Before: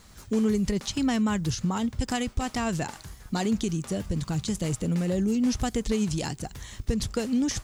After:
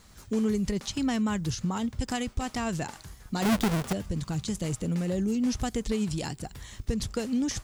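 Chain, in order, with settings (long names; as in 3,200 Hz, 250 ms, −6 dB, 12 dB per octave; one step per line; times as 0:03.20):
0:03.42–0:03.93: each half-wave held at its own peak
0:05.88–0:06.65: notch filter 6,300 Hz, Q 7.6
level −2.5 dB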